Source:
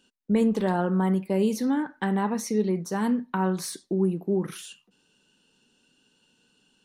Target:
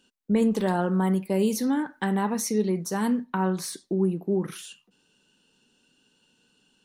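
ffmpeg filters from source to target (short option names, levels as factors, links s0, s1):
-filter_complex "[0:a]asettb=1/sr,asplit=3[s0][s1][s2];[s0]atrim=end=0.424[s3];[s1]atrim=start=0.42:end=3.24,asetpts=PTS-STARTPTS,afade=t=in:d=0.004:c=qsin,afade=t=out:st=2.816:d=0.004:c=qsin,highshelf=f=5500:g=8.5[s4];[s2]atrim=start=3.236[s5];[s3][s4]acrossfade=d=0.004:c1=hsin:c2=qsin[s6];[s6][s5]acrossfade=d=0.004:c1=qsin:c2=hsin"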